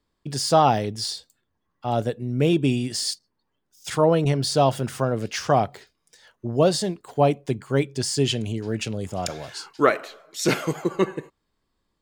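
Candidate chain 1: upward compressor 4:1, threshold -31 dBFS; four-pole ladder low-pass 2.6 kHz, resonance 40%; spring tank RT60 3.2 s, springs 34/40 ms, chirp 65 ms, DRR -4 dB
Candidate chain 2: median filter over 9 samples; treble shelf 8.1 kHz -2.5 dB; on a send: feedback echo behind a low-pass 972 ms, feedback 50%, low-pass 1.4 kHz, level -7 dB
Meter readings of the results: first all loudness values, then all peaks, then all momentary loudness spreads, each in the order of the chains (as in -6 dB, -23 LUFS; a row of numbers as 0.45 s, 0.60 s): -26.5 LUFS, -24.0 LUFS; -8.0 dBFS, -4.5 dBFS; 12 LU, 12 LU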